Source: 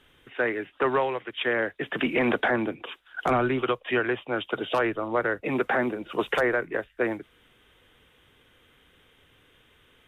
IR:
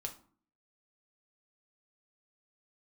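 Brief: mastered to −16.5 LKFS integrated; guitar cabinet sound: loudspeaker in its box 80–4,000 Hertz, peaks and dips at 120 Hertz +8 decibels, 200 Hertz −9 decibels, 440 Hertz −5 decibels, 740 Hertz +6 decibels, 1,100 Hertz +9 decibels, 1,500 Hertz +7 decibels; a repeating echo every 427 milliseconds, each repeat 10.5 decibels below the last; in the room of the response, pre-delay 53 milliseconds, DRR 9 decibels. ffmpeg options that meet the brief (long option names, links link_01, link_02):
-filter_complex "[0:a]aecho=1:1:427|854|1281:0.299|0.0896|0.0269,asplit=2[link_01][link_02];[1:a]atrim=start_sample=2205,adelay=53[link_03];[link_02][link_03]afir=irnorm=-1:irlink=0,volume=-7.5dB[link_04];[link_01][link_04]amix=inputs=2:normalize=0,highpass=80,equalizer=frequency=120:width_type=q:width=4:gain=8,equalizer=frequency=200:width_type=q:width=4:gain=-9,equalizer=frequency=440:width_type=q:width=4:gain=-5,equalizer=frequency=740:width_type=q:width=4:gain=6,equalizer=frequency=1100:width_type=q:width=4:gain=9,equalizer=frequency=1500:width_type=q:width=4:gain=7,lowpass=frequency=4000:width=0.5412,lowpass=frequency=4000:width=1.3066,volume=6dB"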